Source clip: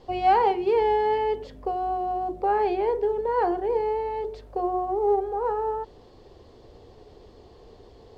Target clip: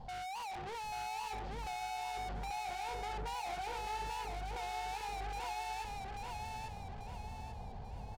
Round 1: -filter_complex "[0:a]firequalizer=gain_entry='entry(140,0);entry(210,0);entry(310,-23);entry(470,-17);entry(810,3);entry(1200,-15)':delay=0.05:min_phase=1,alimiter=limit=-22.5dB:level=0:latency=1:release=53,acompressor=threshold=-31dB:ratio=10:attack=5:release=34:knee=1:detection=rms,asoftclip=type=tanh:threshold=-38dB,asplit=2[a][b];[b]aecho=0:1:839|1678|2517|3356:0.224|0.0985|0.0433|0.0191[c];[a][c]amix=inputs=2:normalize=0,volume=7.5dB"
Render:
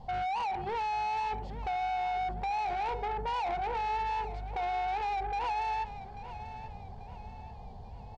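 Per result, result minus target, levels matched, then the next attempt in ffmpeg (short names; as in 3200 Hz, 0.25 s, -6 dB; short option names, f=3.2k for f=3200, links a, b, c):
echo-to-direct -10 dB; soft clip: distortion -6 dB
-filter_complex "[0:a]firequalizer=gain_entry='entry(140,0);entry(210,0);entry(310,-23);entry(470,-17);entry(810,3);entry(1200,-15)':delay=0.05:min_phase=1,alimiter=limit=-22.5dB:level=0:latency=1:release=53,acompressor=threshold=-31dB:ratio=10:attack=5:release=34:knee=1:detection=rms,asoftclip=type=tanh:threshold=-38dB,asplit=2[a][b];[b]aecho=0:1:839|1678|2517|3356|4195|5034:0.708|0.311|0.137|0.0603|0.0265|0.0117[c];[a][c]amix=inputs=2:normalize=0,volume=7.5dB"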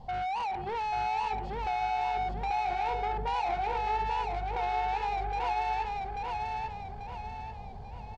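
soft clip: distortion -6 dB
-filter_complex "[0:a]firequalizer=gain_entry='entry(140,0);entry(210,0);entry(310,-23);entry(470,-17);entry(810,3);entry(1200,-15)':delay=0.05:min_phase=1,alimiter=limit=-22.5dB:level=0:latency=1:release=53,acompressor=threshold=-31dB:ratio=10:attack=5:release=34:knee=1:detection=rms,asoftclip=type=tanh:threshold=-49.5dB,asplit=2[a][b];[b]aecho=0:1:839|1678|2517|3356|4195|5034:0.708|0.311|0.137|0.0603|0.0265|0.0117[c];[a][c]amix=inputs=2:normalize=0,volume=7.5dB"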